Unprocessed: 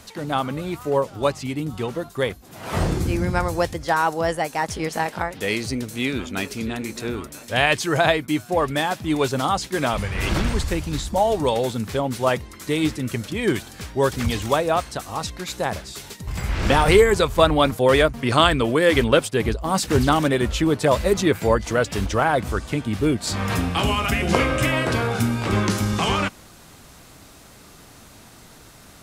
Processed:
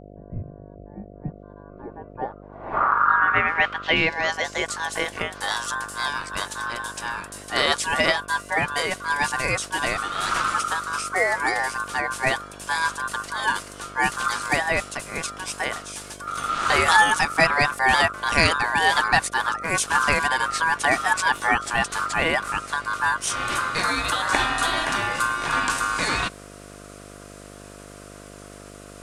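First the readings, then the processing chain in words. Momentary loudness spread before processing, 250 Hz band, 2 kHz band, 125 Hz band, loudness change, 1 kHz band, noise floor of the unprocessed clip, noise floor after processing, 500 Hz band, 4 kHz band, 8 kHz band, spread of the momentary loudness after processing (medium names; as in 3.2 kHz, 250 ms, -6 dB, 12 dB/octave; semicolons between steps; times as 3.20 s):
11 LU, -11.5 dB, +5.0 dB, -11.5 dB, -0.5 dB, +1.5 dB, -47 dBFS, -43 dBFS, -9.0 dB, 0.0 dB, +2.5 dB, 15 LU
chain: ring modulator 1.3 kHz; low-pass sweep 150 Hz -> 9.3 kHz, 1.05–4.82 s; mains buzz 50 Hz, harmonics 14, -44 dBFS -1 dB/octave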